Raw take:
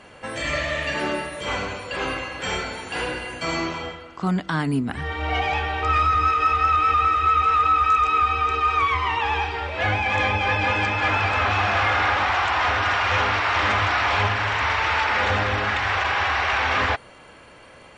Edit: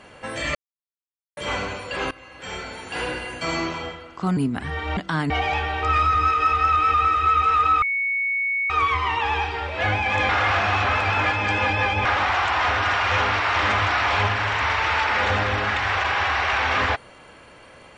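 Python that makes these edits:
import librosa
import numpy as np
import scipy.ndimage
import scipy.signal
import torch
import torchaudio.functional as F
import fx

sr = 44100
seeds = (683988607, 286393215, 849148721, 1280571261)

y = fx.edit(x, sr, fx.silence(start_s=0.55, length_s=0.82),
    fx.fade_in_from(start_s=2.11, length_s=0.99, floor_db=-21.0),
    fx.move(start_s=4.37, length_s=0.33, to_s=5.3),
    fx.bleep(start_s=7.82, length_s=0.88, hz=2220.0, db=-20.5),
    fx.reverse_span(start_s=10.29, length_s=1.76), tone=tone)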